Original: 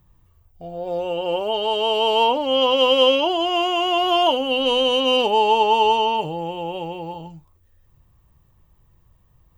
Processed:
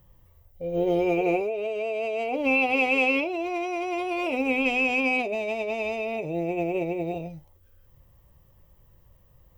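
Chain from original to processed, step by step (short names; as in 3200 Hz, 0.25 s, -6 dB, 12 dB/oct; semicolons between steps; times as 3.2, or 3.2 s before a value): compressor 6:1, threshold -28 dBFS, peak gain reduction 15.5 dB; small resonant body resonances 540/2000/3900 Hz, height 10 dB, ringing for 30 ms; formant shift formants -3 st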